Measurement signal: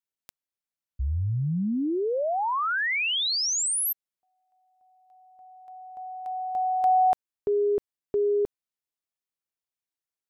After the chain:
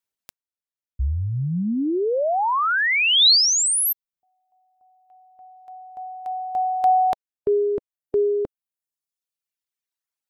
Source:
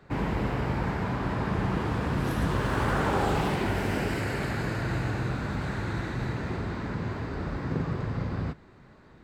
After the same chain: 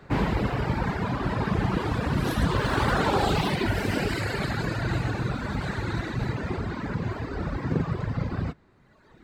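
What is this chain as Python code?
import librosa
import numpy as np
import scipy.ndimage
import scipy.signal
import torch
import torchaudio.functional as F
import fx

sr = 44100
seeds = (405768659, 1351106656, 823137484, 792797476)

y = fx.dereverb_blind(x, sr, rt60_s=1.6)
y = fx.dynamic_eq(y, sr, hz=4000.0, q=2.1, threshold_db=-53.0, ratio=4.0, max_db=8)
y = F.gain(torch.from_numpy(y), 5.5).numpy()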